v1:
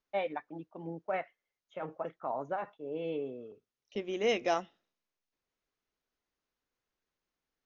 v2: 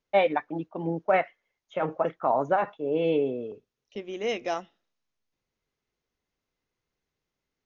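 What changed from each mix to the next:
first voice +11.5 dB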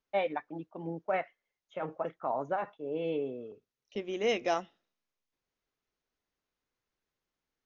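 first voice −8.5 dB

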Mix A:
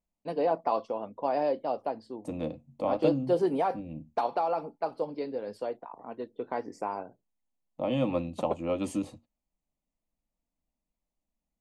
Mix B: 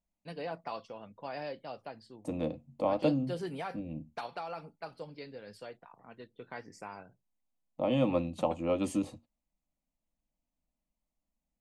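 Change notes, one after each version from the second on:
first voice: add flat-topped bell 500 Hz −12.5 dB 2.6 octaves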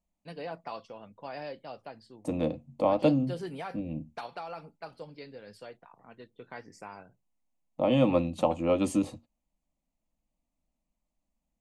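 second voice +4.5 dB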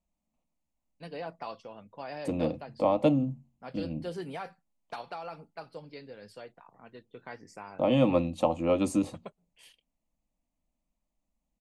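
first voice: entry +0.75 s

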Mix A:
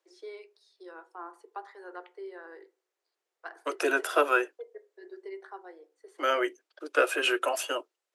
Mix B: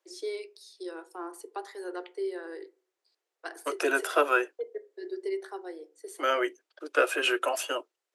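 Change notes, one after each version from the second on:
first voice: remove resonant band-pass 1,100 Hz, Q 1.1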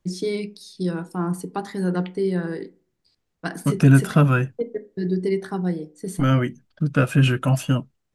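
first voice +8.5 dB
master: remove Butterworth high-pass 340 Hz 72 dB per octave

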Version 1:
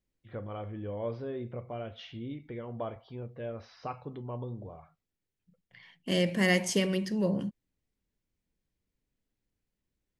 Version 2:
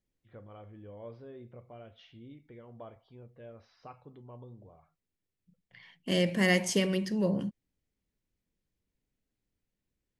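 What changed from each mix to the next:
first voice −10.5 dB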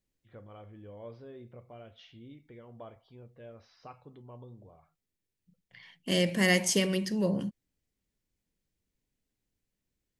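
master: add high-shelf EQ 4,100 Hz +7 dB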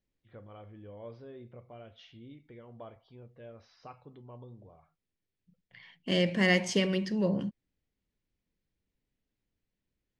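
second voice: add low-pass filter 4,200 Hz 12 dB per octave

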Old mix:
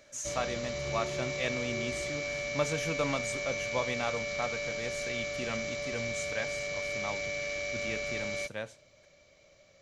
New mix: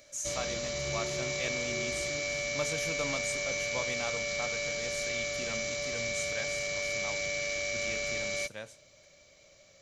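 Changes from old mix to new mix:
speech −5.5 dB
master: add high-shelf EQ 5,200 Hz +12 dB

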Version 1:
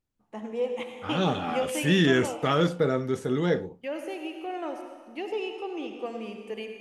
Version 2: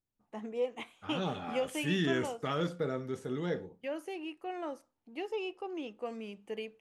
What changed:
second voice −9.5 dB
reverb: off

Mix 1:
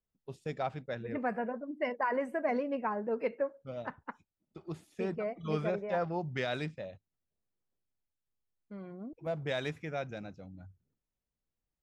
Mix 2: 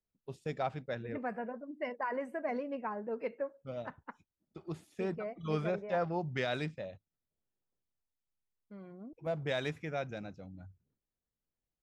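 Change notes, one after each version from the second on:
second voice −4.5 dB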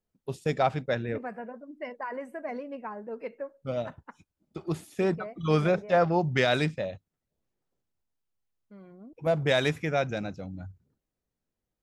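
first voice +10.0 dB
master: add high-shelf EQ 8,800 Hz +9.5 dB

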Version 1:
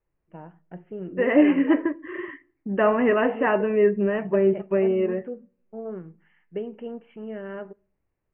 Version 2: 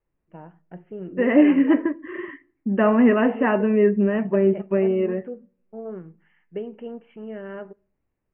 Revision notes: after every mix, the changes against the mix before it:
second voice: add parametric band 230 Hz +10.5 dB 0.37 octaves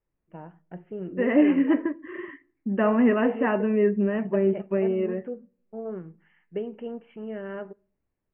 second voice −4.0 dB

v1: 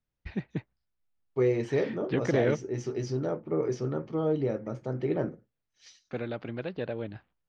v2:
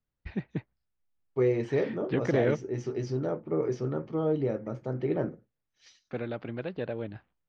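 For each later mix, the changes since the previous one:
master: add high-shelf EQ 6,500 Hz −11 dB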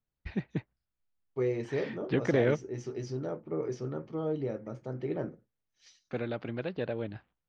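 second voice −5.0 dB
master: add high-shelf EQ 6,500 Hz +11 dB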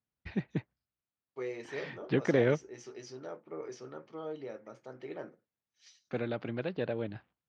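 second voice: add high-pass filter 960 Hz 6 dB per octave
master: add high-pass filter 85 Hz

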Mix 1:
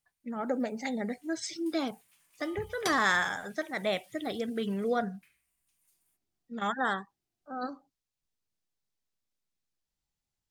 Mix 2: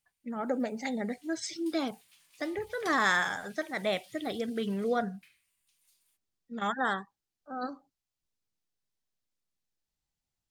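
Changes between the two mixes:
first sound: add parametric band 4,000 Hz +10 dB 1.3 octaves
second sound −10.0 dB

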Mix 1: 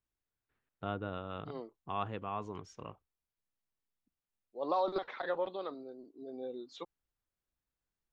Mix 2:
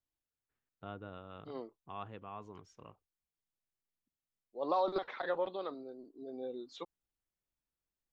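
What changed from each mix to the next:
first voice −8.0 dB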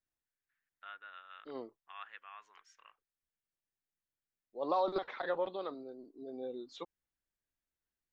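first voice: add high-pass with resonance 1,700 Hz, resonance Q 3.5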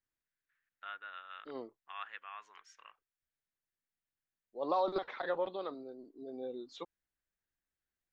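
first voice +4.0 dB

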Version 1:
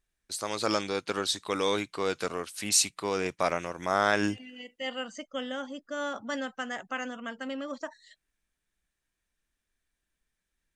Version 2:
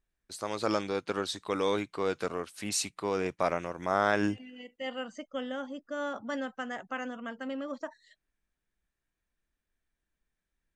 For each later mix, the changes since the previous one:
master: add high-shelf EQ 2,300 Hz −9 dB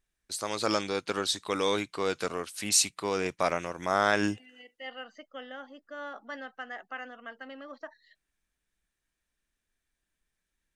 second voice: add loudspeaker in its box 490–3,800 Hz, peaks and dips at 550 Hz −6 dB, 980 Hz −8 dB, 1,400 Hz −4 dB, 2,400 Hz −9 dB, 3,400 Hz −10 dB
master: add high-shelf EQ 2,300 Hz +9 dB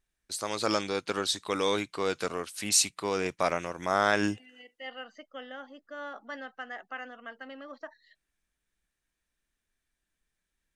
nothing changed

